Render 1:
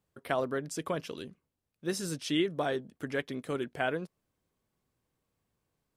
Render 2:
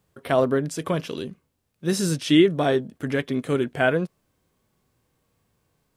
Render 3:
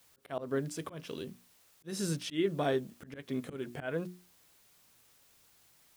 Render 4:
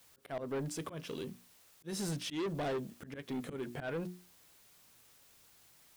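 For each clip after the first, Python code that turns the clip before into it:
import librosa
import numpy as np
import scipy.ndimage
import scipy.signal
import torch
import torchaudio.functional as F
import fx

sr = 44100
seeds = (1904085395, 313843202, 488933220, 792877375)

y1 = fx.hpss(x, sr, part='harmonic', gain_db=9)
y1 = y1 * 10.0 ** (5.0 / 20.0)
y2 = fx.dmg_noise_colour(y1, sr, seeds[0], colour='white', level_db=-56.0)
y2 = fx.auto_swell(y2, sr, attack_ms=195.0)
y2 = fx.hum_notches(y2, sr, base_hz=60, count=6)
y2 = y2 * 10.0 ** (-9.0 / 20.0)
y3 = 10.0 ** (-34.0 / 20.0) * np.tanh(y2 / 10.0 ** (-34.0 / 20.0))
y3 = y3 * 10.0 ** (1.5 / 20.0)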